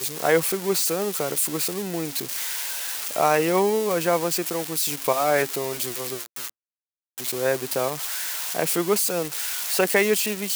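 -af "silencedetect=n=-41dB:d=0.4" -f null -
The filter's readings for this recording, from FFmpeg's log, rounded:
silence_start: 6.49
silence_end: 7.18 | silence_duration: 0.68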